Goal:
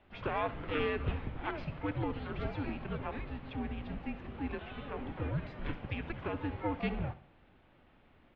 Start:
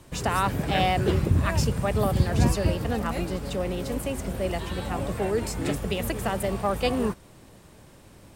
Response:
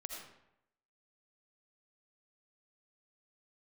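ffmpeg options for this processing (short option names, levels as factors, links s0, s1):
-filter_complex "[0:a]aecho=1:1:67|134|201|268:0.158|0.0682|0.0293|0.0126,asplit=2[s0][s1];[s1]asetrate=88200,aresample=44100,atempo=0.5,volume=0.251[s2];[s0][s2]amix=inputs=2:normalize=0,highpass=f=250:t=q:w=0.5412,highpass=f=250:t=q:w=1.307,lowpass=f=3500:t=q:w=0.5176,lowpass=f=3500:t=q:w=0.7071,lowpass=f=3500:t=q:w=1.932,afreqshift=-300,volume=0.376"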